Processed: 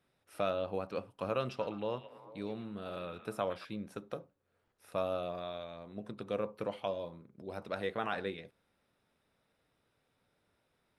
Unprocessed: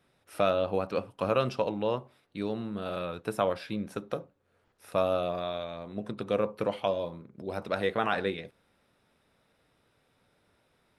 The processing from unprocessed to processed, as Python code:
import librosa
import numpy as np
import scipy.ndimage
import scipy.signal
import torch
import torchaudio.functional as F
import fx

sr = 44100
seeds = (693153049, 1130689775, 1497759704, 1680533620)

y = fx.echo_stepped(x, sr, ms=112, hz=2700.0, octaves=-0.7, feedback_pct=70, wet_db=-7.0, at=(1.38, 3.65))
y = y * librosa.db_to_amplitude(-7.5)